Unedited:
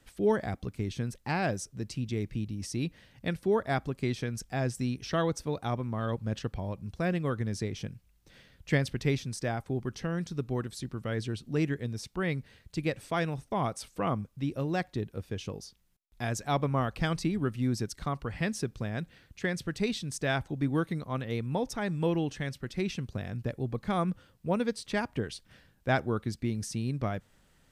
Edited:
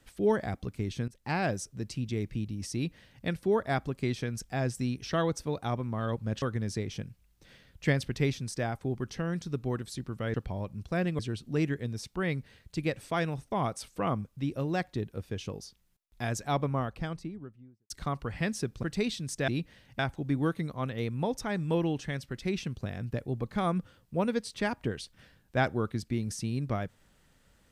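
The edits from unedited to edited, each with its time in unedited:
1.08–1.33 fade in, from -21 dB
2.74–3.25 copy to 20.31
6.42–7.27 move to 11.19
16.32–17.9 studio fade out
18.83–19.66 cut

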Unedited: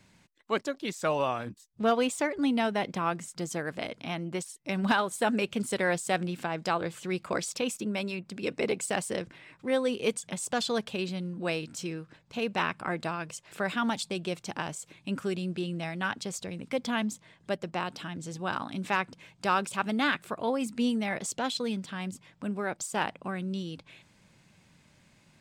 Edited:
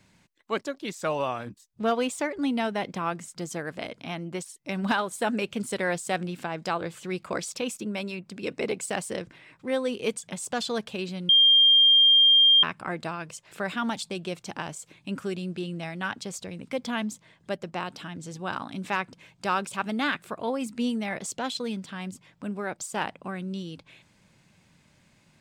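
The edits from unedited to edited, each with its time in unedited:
11.29–12.63 bleep 3200 Hz -14 dBFS

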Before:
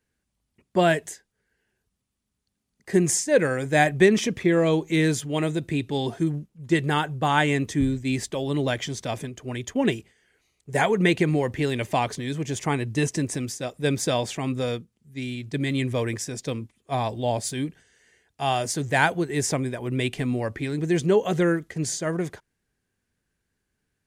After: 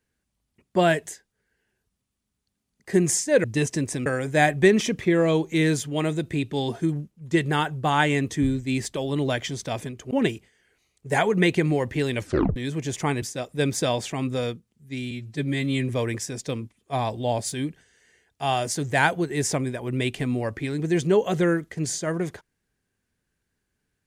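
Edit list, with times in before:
9.49–9.74 cut
11.82 tape stop 0.37 s
12.85–13.47 move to 3.44
15.36–15.88 stretch 1.5×

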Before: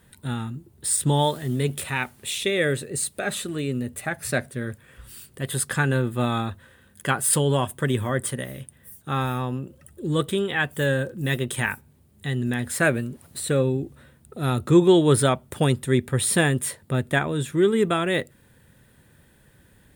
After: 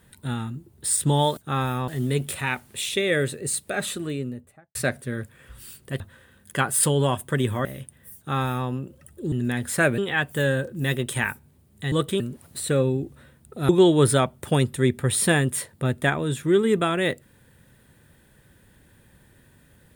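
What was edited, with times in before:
3.41–4.24 studio fade out
5.49–6.5 cut
8.15–8.45 cut
8.97–9.48 copy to 1.37
10.12–10.4 swap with 12.34–13
14.49–14.78 cut

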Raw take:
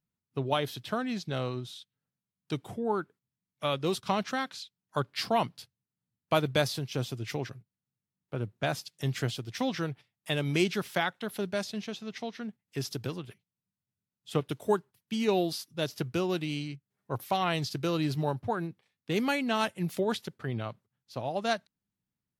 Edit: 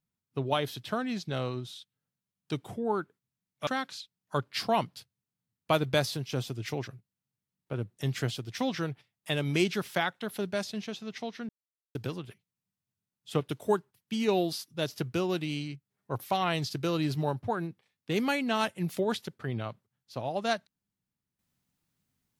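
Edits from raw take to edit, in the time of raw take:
3.67–4.29 cut
8.59–8.97 cut
12.49–12.95 mute

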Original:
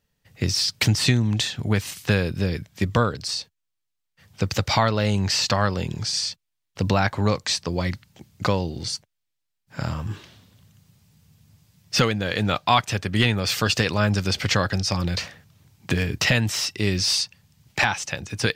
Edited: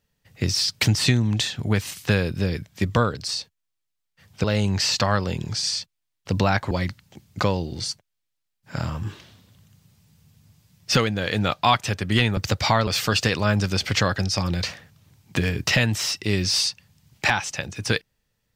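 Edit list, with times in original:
4.44–4.94 move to 13.41
7.21–7.75 cut

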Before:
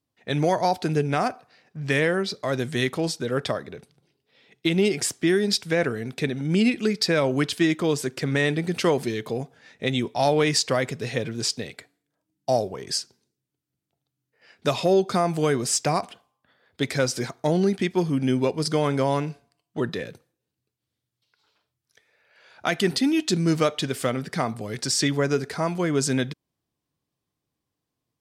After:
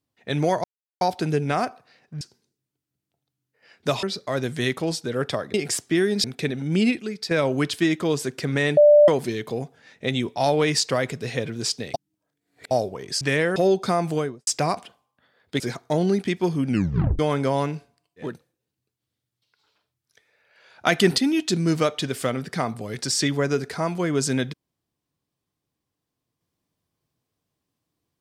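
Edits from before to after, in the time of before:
0.64 insert silence 0.37 s
1.84–2.19 swap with 13–14.82
3.7–4.86 cut
5.56–6.03 cut
6.78–7.1 gain -7.5 dB
8.56–8.87 bleep 591 Hz -9 dBFS
11.73–12.5 reverse
15.33–15.73 studio fade out
16.86–17.14 cut
18.23 tape stop 0.50 s
19.82–20.08 cut, crossfade 0.24 s
22.66–22.98 gain +4.5 dB

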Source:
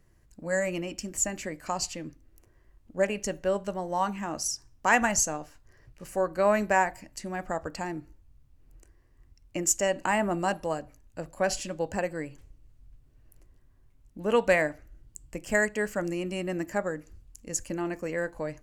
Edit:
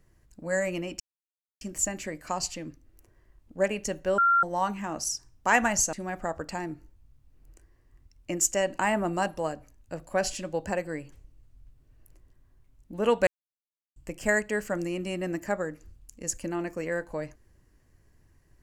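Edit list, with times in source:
1 insert silence 0.61 s
3.57–3.82 bleep 1380 Hz -18 dBFS
5.32–7.19 cut
14.53–15.22 mute

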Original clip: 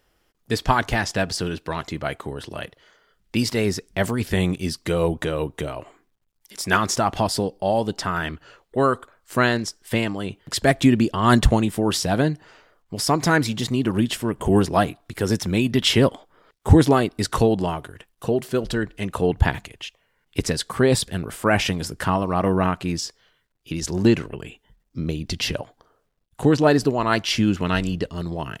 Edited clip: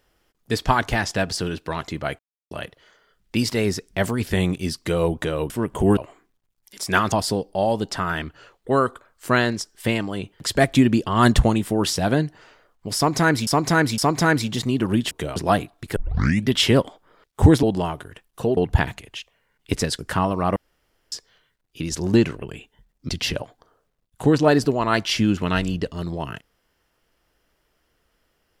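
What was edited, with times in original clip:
2.19–2.51 mute
5.5–5.75 swap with 14.16–14.63
6.9–7.19 cut
13.03–13.54 loop, 3 plays
15.23 tape start 0.51 s
16.9–17.47 cut
18.41–19.24 cut
20.66–21.9 cut
22.47–23.03 room tone
25–25.28 cut

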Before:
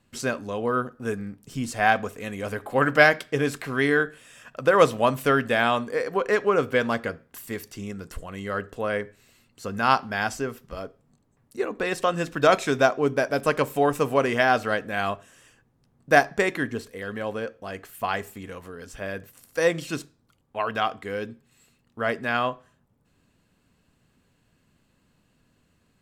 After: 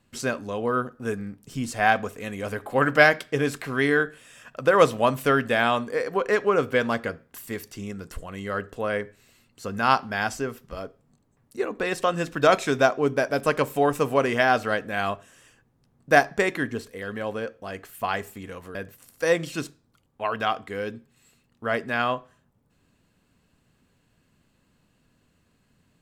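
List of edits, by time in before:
18.75–19.1 cut

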